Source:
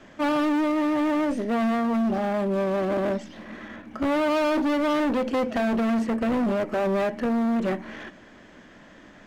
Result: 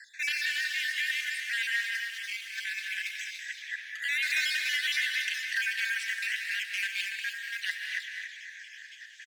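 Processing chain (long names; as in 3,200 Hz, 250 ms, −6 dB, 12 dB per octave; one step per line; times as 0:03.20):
time-frequency cells dropped at random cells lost 48%
Chebyshev high-pass filter 1,600 Hz, order 8
in parallel at +2 dB: output level in coarse steps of 16 dB
on the sum: gain into a clipping stage and back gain 28.5 dB
single-tap delay 288 ms −7 dB
reverb whose tail is shaped and stops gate 250 ms rising, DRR 4.5 dB
level +6 dB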